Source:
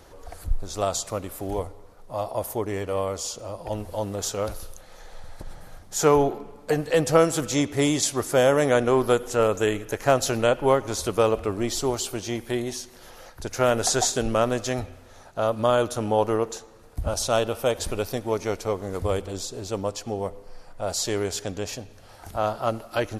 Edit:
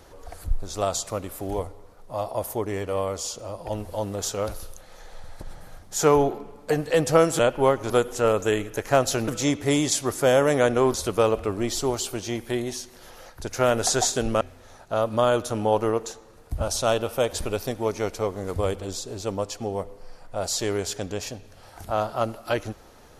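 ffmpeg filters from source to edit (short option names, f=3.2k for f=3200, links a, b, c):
-filter_complex "[0:a]asplit=6[a][b][c][d][e][f];[a]atrim=end=7.392[g];[b]atrim=start=10.428:end=10.942[h];[c]atrim=start=9.048:end=10.432[i];[d]atrim=start=7.388:end=9.052[j];[e]atrim=start=10.938:end=14.412[k];[f]atrim=start=14.868[l];[g][h]acrossfade=d=0.004:c1=hsin:c2=hsin[m];[m][i]acrossfade=d=0.004:c1=hsin:c2=hsin[n];[n][j]acrossfade=d=0.004:c1=hsin:c2=hsin[o];[o][k]acrossfade=d=0.004:c1=hsin:c2=hsin[p];[p][l]acrossfade=d=0.004:c1=hsin:c2=hsin"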